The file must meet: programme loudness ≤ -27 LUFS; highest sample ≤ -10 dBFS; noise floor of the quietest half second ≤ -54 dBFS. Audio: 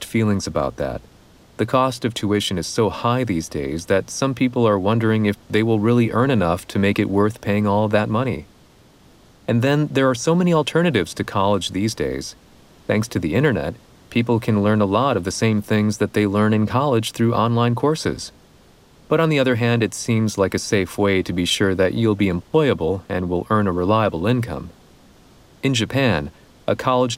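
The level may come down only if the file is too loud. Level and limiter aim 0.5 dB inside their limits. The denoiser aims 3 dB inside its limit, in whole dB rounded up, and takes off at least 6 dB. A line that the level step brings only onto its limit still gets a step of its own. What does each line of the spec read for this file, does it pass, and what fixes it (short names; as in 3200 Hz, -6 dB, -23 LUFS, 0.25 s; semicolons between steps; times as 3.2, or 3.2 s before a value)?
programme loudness -19.5 LUFS: fail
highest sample -5.5 dBFS: fail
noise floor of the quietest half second -51 dBFS: fail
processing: gain -8 dB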